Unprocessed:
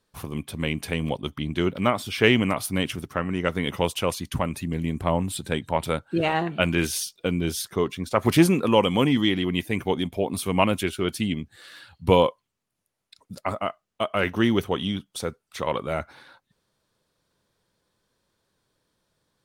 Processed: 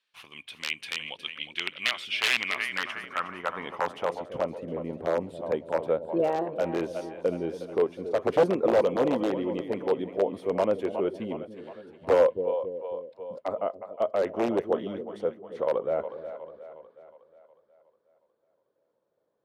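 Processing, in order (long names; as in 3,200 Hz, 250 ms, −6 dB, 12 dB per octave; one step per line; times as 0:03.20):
echo with a time of its own for lows and highs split 500 Hz, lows 276 ms, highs 363 ms, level −11 dB
wrap-around overflow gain 11.5 dB
band-pass filter sweep 2,700 Hz → 520 Hz, 0:02.23–0:04.55
level +4 dB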